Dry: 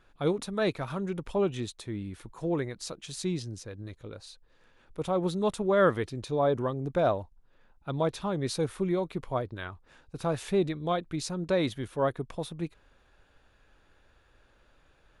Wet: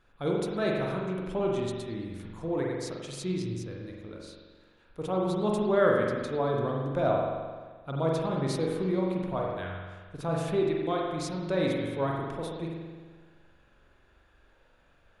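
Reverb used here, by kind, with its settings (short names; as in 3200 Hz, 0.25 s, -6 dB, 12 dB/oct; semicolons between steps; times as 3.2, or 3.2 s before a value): spring tank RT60 1.5 s, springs 43 ms, chirp 70 ms, DRR -2 dB; gain -3.5 dB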